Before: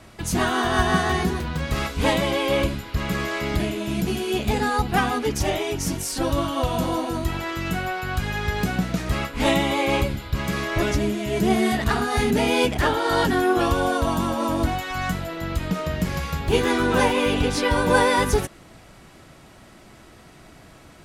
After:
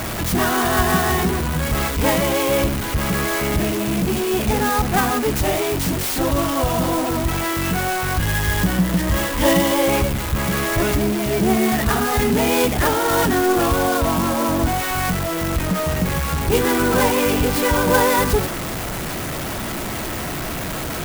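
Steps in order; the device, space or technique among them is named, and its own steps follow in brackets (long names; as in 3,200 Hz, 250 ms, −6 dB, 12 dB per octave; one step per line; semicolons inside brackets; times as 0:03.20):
0:08.18–0:09.89: EQ curve with evenly spaced ripples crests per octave 1.2, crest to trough 11 dB
early CD player with a faulty converter (converter with a step at zero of −20.5 dBFS; converter with an unsteady clock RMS 0.052 ms)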